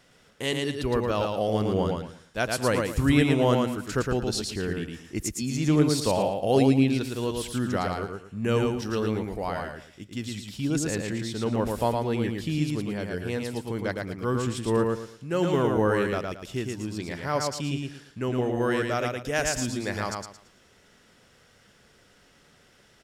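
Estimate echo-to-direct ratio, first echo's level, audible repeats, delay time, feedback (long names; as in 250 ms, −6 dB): −3.0 dB, −3.5 dB, 3, 112 ms, 27%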